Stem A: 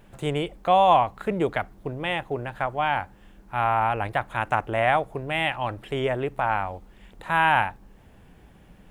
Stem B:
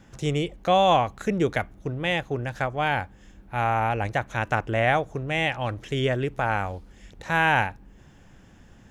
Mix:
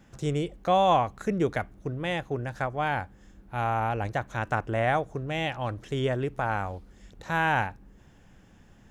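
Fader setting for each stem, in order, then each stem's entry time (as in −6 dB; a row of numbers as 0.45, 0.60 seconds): −12.5, −4.5 decibels; 0.00, 0.00 seconds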